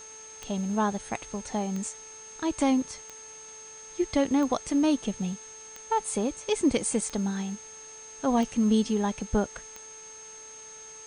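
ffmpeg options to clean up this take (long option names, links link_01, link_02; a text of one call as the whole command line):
ffmpeg -i in.wav -af "adeclick=threshold=4,bandreject=frequency=438.6:width_type=h:width=4,bandreject=frequency=877.2:width_type=h:width=4,bandreject=frequency=1315.8:width_type=h:width=4,bandreject=frequency=1754.4:width_type=h:width=4,bandreject=frequency=2193:width_type=h:width=4,bandreject=frequency=2631.6:width_type=h:width=4,bandreject=frequency=6400:width=30,afwtdn=0.0028" out.wav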